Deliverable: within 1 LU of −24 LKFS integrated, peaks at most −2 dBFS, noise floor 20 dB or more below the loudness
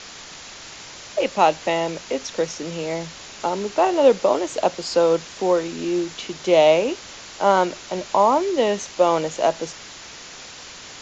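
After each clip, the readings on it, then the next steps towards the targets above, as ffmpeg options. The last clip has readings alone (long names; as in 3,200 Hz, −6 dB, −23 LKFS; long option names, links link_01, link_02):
background noise floor −40 dBFS; target noise floor −41 dBFS; integrated loudness −21.0 LKFS; sample peak −2.5 dBFS; target loudness −24.0 LKFS
→ -af "afftdn=noise_reduction=6:noise_floor=-40"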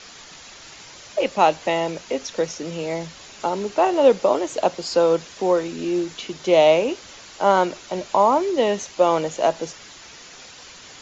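background noise floor −43 dBFS; integrated loudness −21.0 LKFS; sample peak −2.5 dBFS; target loudness −24.0 LKFS
→ -af "volume=-3dB"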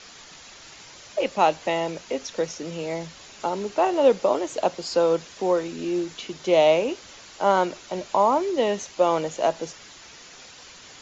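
integrated loudness −24.0 LKFS; sample peak −5.5 dBFS; background noise floor −46 dBFS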